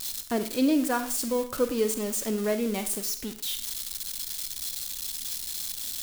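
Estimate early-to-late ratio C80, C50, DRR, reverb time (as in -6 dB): 15.5 dB, 11.0 dB, 9.0 dB, 0.40 s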